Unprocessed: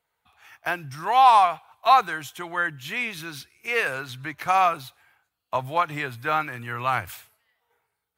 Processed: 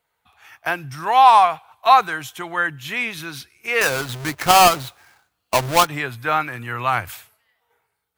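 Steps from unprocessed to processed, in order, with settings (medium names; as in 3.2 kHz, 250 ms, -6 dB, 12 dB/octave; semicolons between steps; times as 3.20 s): 3.81–5.87 s: square wave that keeps the level; trim +4 dB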